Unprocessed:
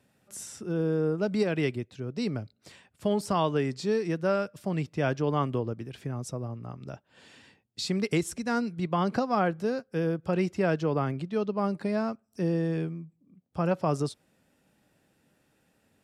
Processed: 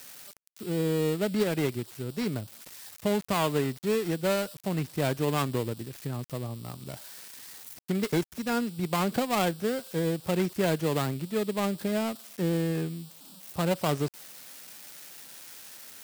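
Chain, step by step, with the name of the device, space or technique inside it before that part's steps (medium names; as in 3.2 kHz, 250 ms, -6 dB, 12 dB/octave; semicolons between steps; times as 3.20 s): budget class-D amplifier (dead-time distortion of 0.23 ms; zero-crossing glitches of -28 dBFS)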